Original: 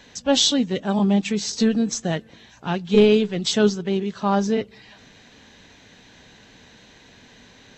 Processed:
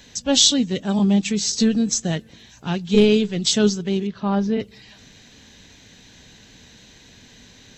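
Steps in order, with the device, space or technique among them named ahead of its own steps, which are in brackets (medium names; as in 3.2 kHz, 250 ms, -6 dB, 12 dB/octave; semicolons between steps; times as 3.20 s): 4.07–4.60 s: distance through air 260 m; smiley-face EQ (bass shelf 140 Hz +4 dB; peaking EQ 910 Hz -5.5 dB 2.6 oct; treble shelf 5.7 kHz +9 dB); trim +1.5 dB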